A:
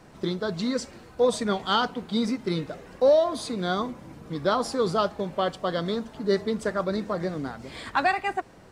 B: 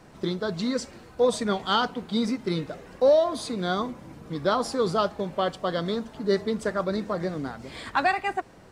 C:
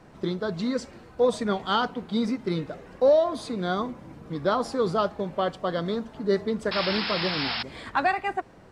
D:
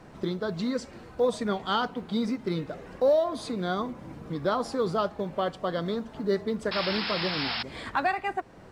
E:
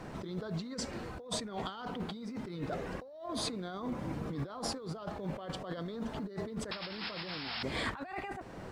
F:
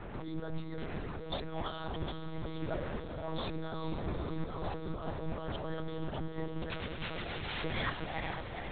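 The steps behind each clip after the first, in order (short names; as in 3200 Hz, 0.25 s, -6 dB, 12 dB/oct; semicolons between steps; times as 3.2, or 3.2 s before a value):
nothing audible
high shelf 4200 Hz -8 dB; painted sound noise, 6.71–7.63, 680–5400 Hz -30 dBFS
in parallel at +1 dB: compressor, threshold -35 dBFS, peak gain reduction 18 dB; on the sum: short-mantissa float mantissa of 6-bit; gain -4.5 dB
negative-ratio compressor -37 dBFS, ratio -1; gain -3 dB
on a send: diffused feedback echo 0.455 s, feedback 61%, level -7 dB; on the sum: monotone LPC vocoder at 8 kHz 160 Hz; gain +1 dB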